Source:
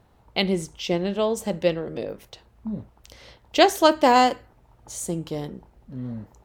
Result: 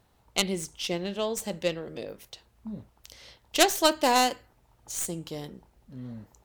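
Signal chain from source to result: tracing distortion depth 0.096 ms; treble shelf 2.5 kHz +10.5 dB; trim -7.5 dB

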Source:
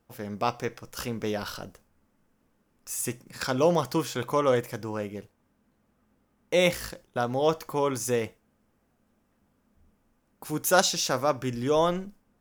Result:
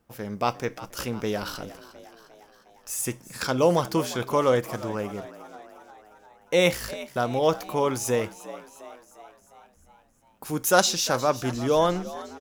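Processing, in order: frequency-shifting echo 355 ms, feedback 60%, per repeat +72 Hz, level -16.5 dB; trim +2 dB

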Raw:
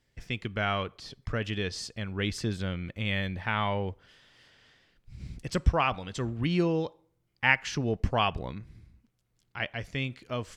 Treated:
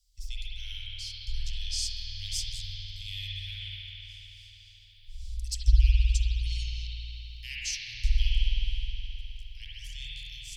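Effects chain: inverse Chebyshev band-stop 190–1200 Hz, stop band 70 dB; spring tank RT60 3.9 s, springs 52 ms, chirp 30 ms, DRR -8 dB; trim +7.5 dB

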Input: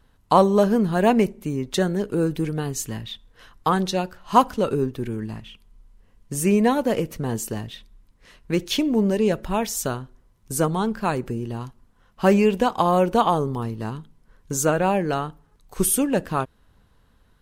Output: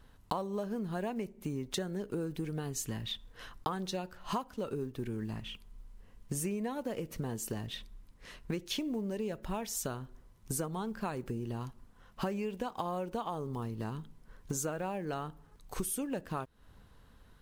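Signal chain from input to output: block-companded coder 7-bit; compression 10:1, threshold -33 dBFS, peak gain reduction 24 dB

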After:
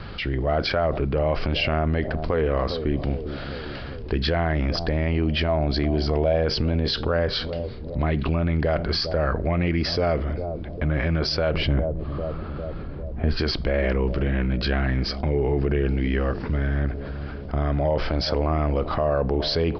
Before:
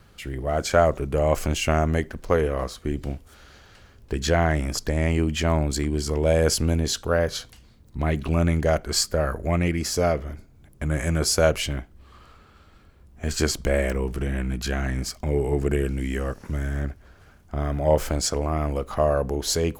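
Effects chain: bucket-brigade echo 401 ms, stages 2048, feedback 49%, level -18 dB; peak limiter -16 dBFS, peak gain reduction 9.5 dB; careless resampling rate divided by 3×, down filtered, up hold; 11.54–13.39 s: tilt shelf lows +6.5 dB, about 1.4 kHz; resampled via 11.025 kHz; 5.48–6.44 s: peaking EQ 680 Hz +11.5 dB 0.28 oct; level flattener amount 50%

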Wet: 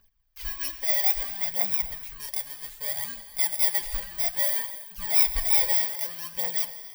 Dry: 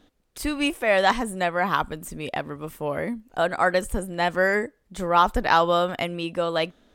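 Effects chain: bit-reversed sample order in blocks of 32 samples; amplifier tone stack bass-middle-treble 10-0-10; phaser 0.62 Hz, delay 3.9 ms, feedback 58%; peaking EQ 9 kHz -14.5 dB 1.2 oct, from 2.20 s -3 dB, from 3.66 s -9.5 dB; gated-style reverb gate 350 ms flat, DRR 10 dB; trim -1.5 dB

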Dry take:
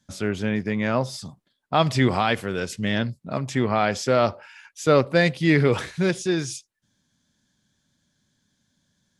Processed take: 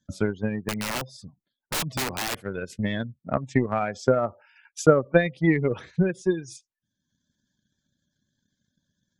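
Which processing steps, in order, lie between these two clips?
spectral gate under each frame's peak -20 dB strong; transient shaper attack +12 dB, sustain -5 dB; 0.68–2.43 s: integer overflow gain 15 dB; trim -6.5 dB

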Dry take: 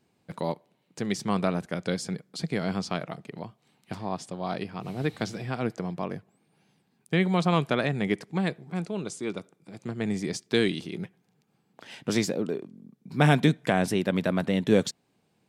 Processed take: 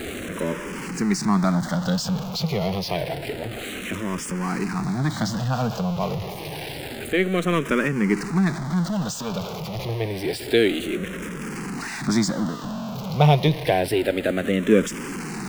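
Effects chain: jump at every zero crossing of -27.5 dBFS; treble shelf 6.1 kHz -6.5 dB; barber-pole phaser -0.28 Hz; trim +5.5 dB

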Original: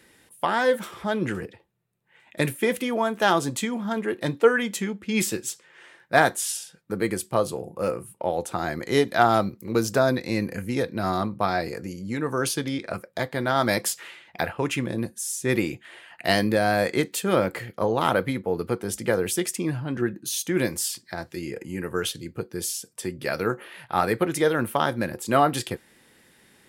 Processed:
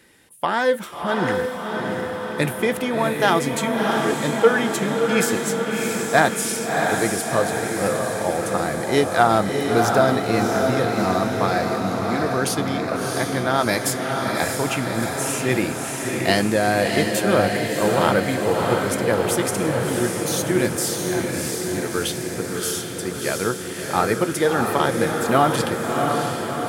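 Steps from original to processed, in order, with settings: echo that smears into a reverb 668 ms, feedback 67%, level -3 dB; trim +2 dB

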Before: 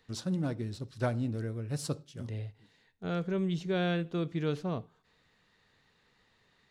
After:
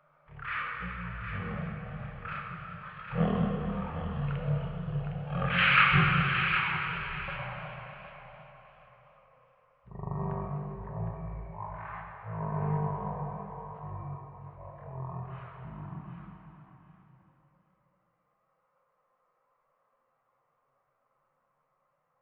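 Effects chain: Doppler pass-by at 1.71 s, 25 m/s, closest 11 m; hum notches 50/100/150/200/250/300/350/400 Hz; reverb removal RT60 1.5 s; graphic EQ 125/250/500/1000/2000/4000/8000 Hz -12/-7/+10/-8/+8/+11/+10 dB; wide varispeed 0.302×; thinning echo 761 ms, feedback 22%, high-pass 780 Hz, level -6.5 dB; plate-style reverb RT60 3.4 s, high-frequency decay 0.9×, DRR -0.5 dB; modulated delay 133 ms, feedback 75%, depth 216 cents, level -17 dB; trim +5 dB

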